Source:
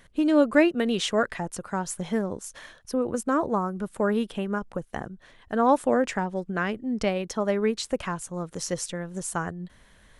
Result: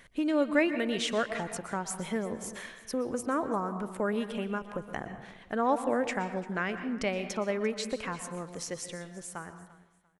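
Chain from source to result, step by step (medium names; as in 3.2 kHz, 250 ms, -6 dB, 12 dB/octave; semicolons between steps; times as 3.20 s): fade out at the end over 2.60 s; bass shelf 160 Hz -5 dB; reverberation RT60 0.70 s, pre-delay 113 ms, DRR 10.5 dB; in parallel at +2.5 dB: compression, threshold -34 dBFS, peak gain reduction 19.5 dB; on the sum: peaking EQ 2.2 kHz +5.5 dB 0.52 oct; on a send: feedback delay 344 ms, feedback 26%, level -19.5 dB; on the sum: trim -8 dB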